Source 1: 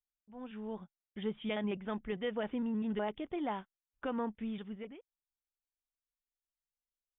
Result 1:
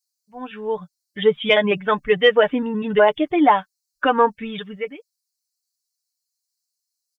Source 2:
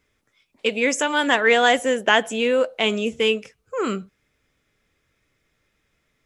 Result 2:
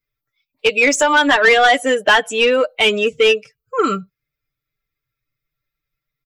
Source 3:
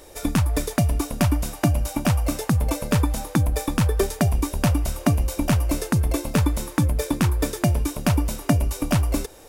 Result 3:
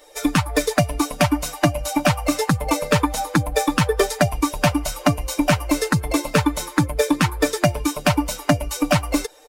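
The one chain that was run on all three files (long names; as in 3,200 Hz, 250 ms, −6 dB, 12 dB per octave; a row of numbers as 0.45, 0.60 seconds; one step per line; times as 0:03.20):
spectral dynamics exaggerated over time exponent 1.5
high-shelf EQ 8,500 Hz −2 dB
comb filter 6.7 ms, depth 58%
downward compressor 2 to 1, threshold −20 dBFS
mid-hump overdrive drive 16 dB, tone 4,000 Hz, clips at −7.5 dBFS
normalise the peak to −3 dBFS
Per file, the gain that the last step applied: +15.5, +5.0, +4.0 decibels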